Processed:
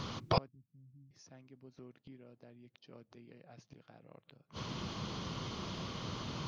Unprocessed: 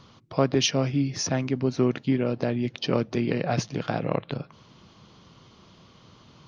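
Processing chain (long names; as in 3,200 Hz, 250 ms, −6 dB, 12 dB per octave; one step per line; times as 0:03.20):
gate with flip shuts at −27 dBFS, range −42 dB
0:00.48–0:01.11: inverse Chebyshev low-pass filter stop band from 1,200 Hz, stop band 80 dB
level +11 dB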